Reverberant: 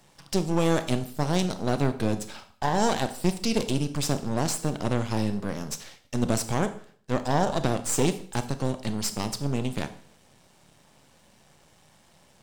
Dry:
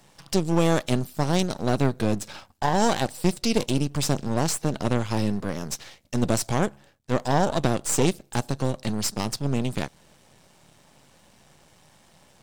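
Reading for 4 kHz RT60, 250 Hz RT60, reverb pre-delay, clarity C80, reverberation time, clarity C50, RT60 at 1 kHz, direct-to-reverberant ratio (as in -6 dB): 0.50 s, 0.50 s, 24 ms, 16.5 dB, 0.50 s, 13.0 dB, 0.50 s, 10.5 dB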